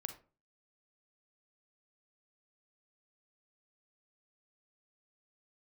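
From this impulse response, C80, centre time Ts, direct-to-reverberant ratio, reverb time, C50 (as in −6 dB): 16.5 dB, 10 ms, 7.5 dB, 0.35 s, 10.5 dB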